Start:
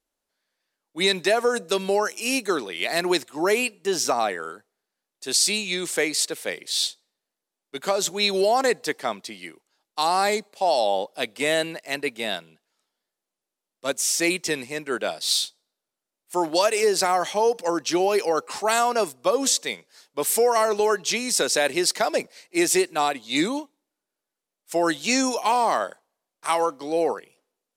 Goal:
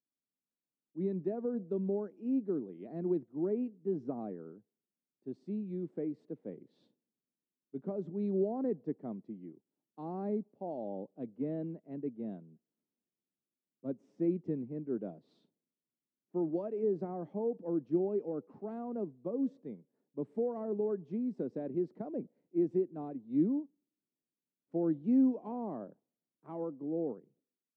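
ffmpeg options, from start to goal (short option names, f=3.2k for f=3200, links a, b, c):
-af "dynaudnorm=f=190:g=9:m=11.5dB,asuperpass=centerf=180:order=4:qfactor=0.93,volume=-8dB"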